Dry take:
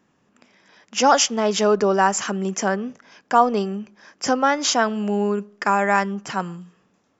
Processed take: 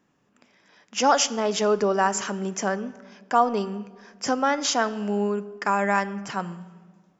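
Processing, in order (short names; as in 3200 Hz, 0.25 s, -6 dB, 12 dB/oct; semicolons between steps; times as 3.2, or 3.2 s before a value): shoebox room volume 1800 m³, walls mixed, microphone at 0.34 m; gain -4 dB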